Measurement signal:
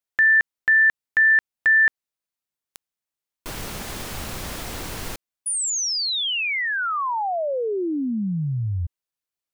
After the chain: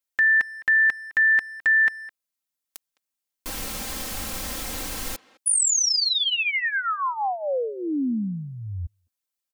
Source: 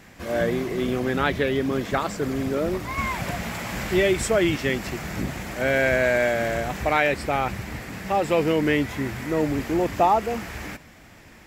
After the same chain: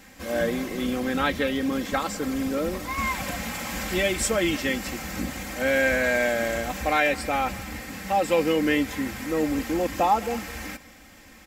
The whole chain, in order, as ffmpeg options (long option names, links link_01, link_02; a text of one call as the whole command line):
ffmpeg -i in.wav -filter_complex "[0:a]highshelf=frequency=3900:gain=7,aecho=1:1:3.8:0.62,asplit=2[link_01][link_02];[link_02]adelay=210,highpass=300,lowpass=3400,asoftclip=type=hard:threshold=-13dB,volume=-19dB[link_03];[link_01][link_03]amix=inputs=2:normalize=0,volume=-3.5dB" out.wav